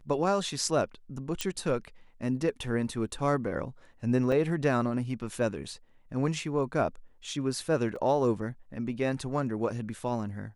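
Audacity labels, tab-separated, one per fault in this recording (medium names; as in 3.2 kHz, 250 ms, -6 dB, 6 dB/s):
1.410000	1.410000	pop -14 dBFS
4.320000	4.320000	dropout 4.5 ms
7.960000	7.960000	dropout 2.5 ms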